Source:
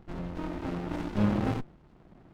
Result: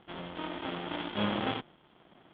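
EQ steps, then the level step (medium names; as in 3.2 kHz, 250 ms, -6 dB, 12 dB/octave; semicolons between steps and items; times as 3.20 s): high-pass 830 Hz 6 dB/octave; resonant low-pass 3.3 kHz, resonance Q 12; distance through air 480 m; +6.0 dB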